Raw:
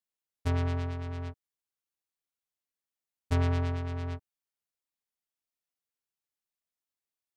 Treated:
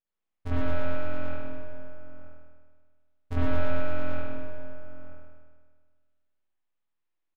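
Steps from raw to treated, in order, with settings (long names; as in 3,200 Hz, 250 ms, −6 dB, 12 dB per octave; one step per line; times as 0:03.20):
half-wave rectification
high-shelf EQ 4,000 Hz −11.5 dB
in parallel at −6 dB: hard clipping −33 dBFS, distortion −8 dB
on the sum: slap from a distant wall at 160 metres, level −14 dB
spring reverb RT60 1.6 s, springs 49 ms, chirp 25 ms, DRR −9.5 dB
level −2.5 dB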